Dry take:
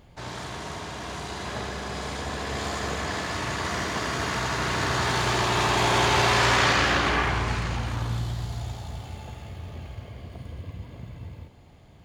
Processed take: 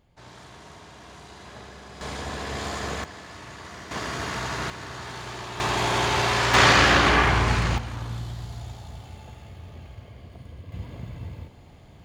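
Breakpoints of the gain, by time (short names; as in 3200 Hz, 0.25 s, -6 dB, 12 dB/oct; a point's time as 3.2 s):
-10.5 dB
from 2.01 s -1 dB
from 3.04 s -12 dB
from 3.91 s -2.5 dB
from 4.7 s -12 dB
from 5.6 s -2 dB
from 6.54 s +5 dB
from 7.78 s -4 dB
from 10.72 s +3 dB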